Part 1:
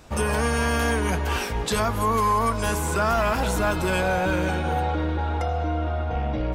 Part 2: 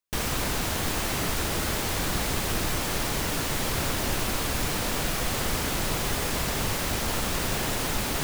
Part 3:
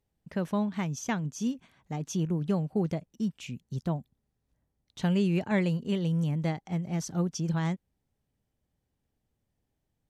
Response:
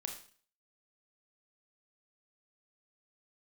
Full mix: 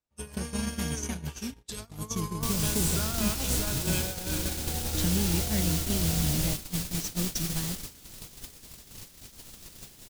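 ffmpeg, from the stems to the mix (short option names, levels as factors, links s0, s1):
-filter_complex "[0:a]volume=0.376,asplit=3[s0][s1][s2];[s1]volume=0.473[s3];[s2]volume=0.282[s4];[1:a]adelay=2300,volume=0.531,asplit=2[s5][s6];[s6]volume=0.0794[s7];[2:a]highpass=47,acompressor=threshold=0.0158:ratio=2,volume=1.12,asplit=2[s8][s9];[s9]volume=0.562[s10];[3:a]atrim=start_sample=2205[s11];[s3][s7][s10]amix=inputs=3:normalize=0[s12];[s12][s11]afir=irnorm=-1:irlink=0[s13];[s4]aecho=0:1:111|222|333|444|555|666|777|888:1|0.54|0.292|0.157|0.085|0.0459|0.0248|0.0134[s14];[s0][s5][s8][s13][s14]amix=inputs=5:normalize=0,highshelf=f=2700:g=7,acrossover=split=380|3000[s15][s16][s17];[s16]acompressor=threshold=0.00112:ratio=1.5[s18];[s15][s18][s17]amix=inputs=3:normalize=0,agate=range=0.0112:threshold=0.0447:ratio=16:detection=peak"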